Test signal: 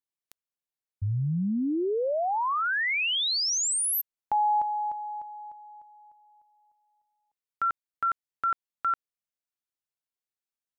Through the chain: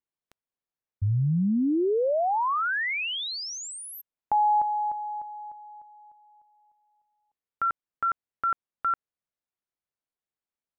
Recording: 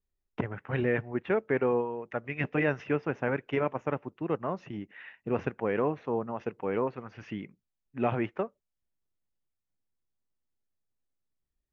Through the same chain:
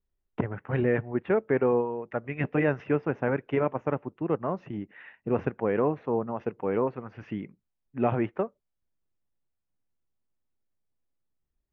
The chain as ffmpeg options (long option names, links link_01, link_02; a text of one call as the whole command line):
ffmpeg -i in.wav -af "lowpass=frequency=1400:poles=1,volume=3.5dB" out.wav